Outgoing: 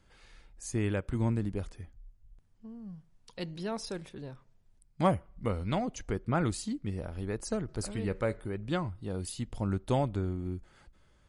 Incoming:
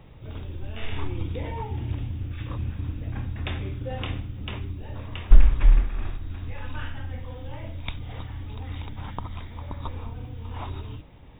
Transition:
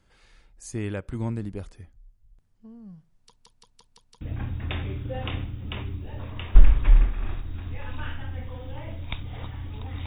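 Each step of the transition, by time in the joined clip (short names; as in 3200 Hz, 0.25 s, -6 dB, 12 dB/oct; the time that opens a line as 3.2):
outgoing
3.19 stutter in place 0.17 s, 6 plays
4.21 switch to incoming from 2.97 s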